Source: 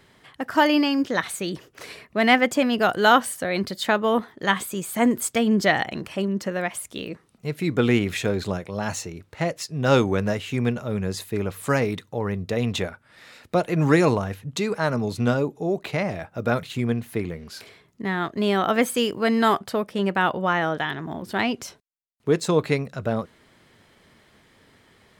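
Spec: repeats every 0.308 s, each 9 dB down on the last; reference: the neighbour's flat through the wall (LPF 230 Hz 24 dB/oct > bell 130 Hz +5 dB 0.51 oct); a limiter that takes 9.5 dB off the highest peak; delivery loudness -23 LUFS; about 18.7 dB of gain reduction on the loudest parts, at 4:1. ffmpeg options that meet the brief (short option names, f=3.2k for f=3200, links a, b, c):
-af "acompressor=threshold=-36dB:ratio=4,alimiter=level_in=6.5dB:limit=-24dB:level=0:latency=1,volume=-6.5dB,lowpass=f=230:w=0.5412,lowpass=f=230:w=1.3066,equalizer=f=130:t=o:w=0.51:g=5,aecho=1:1:308|616|924|1232:0.355|0.124|0.0435|0.0152,volume=21.5dB"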